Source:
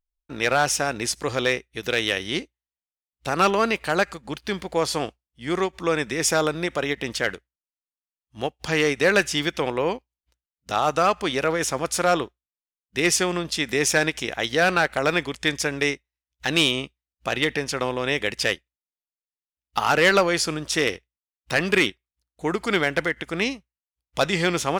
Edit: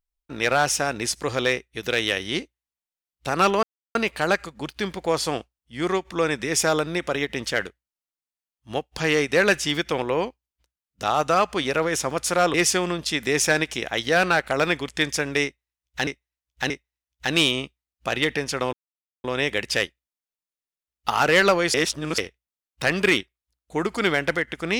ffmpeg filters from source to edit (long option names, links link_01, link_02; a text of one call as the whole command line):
ffmpeg -i in.wav -filter_complex "[0:a]asplit=8[link_01][link_02][link_03][link_04][link_05][link_06][link_07][link_08];[link_01]atrim=end=3.63,asetpts=PTS-STARTPTS,afade=type=out:start_time=3.626:duration=0.004:curve=hsin,apad=pad_dur=0.32[link_09];[link_02]atrim=start=3.63:end=12.222,asetpts=PTS-STARTPTS,afade=type=in:duration=0.004:curve=hsin[link_10];[link_03]atrim=start=12.998:end=16.532[link_11];[link_04]atrim=start=15.898:end=16.532[link_12];[link_05]atrim=start=15.898:end=17.93,asetpts=PTS-STARTPTS,afade=type=out:start_time=2.028:duration=0.004:curve=hsin,apad=pad_dur=0.51[link_13];[link_06]atrim=start=17.93:end=20.432,asetpts=PTS-STARTPTS,afade=type=in:duration=0.004:curve=hsin[link_14];[link_07]atrim=start=20.428:end=20.872,asetpts=PTS-STARTPTS,areverse[link_15];[link_08]atrim=start=20.868[link_16];[link_09][link_10]concat=n=2:v=0:a=1[link_17];[link_17][link_11]acrossfade=duration=0.004:curve1=hsin:curve2=hsin[link_18];[link_18][link_12]acrossfade=duration=0.004:curve1=hsin:curve2=hsin[link_19];[link_13][link_14]concat=n=2:v=0:a=1[link_20];[link_19][link_20]acrossfade=duration=0.004:curve1=hsin:curve2=hsin[link_21];[link_21][link_15]acrossfade=duration=0.004:curve1=hsin:curve2=hsin[link_22];[link_22][link_16]acrossfade=duration=0.004:curve1=hsin:curve2=hsin" out.wav